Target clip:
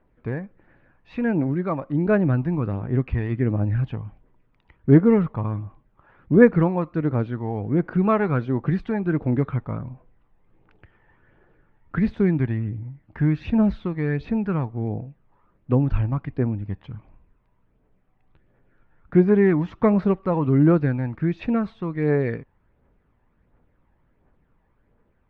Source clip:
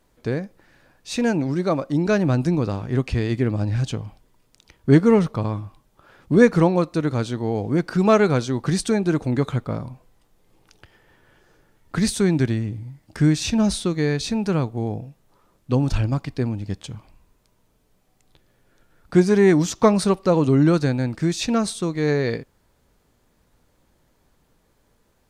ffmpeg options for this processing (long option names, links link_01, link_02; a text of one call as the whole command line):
ffmpeg -i in.wav -af "lowpass=frequency=2300:width=0.5412,lowpass=frequency=2300:width=1.3066,aphaser=in_gain=1:out_gain=1:delay=1.2:decay=0.4:speed=1.4:type=triangular,volume=-3.5dB" out.wav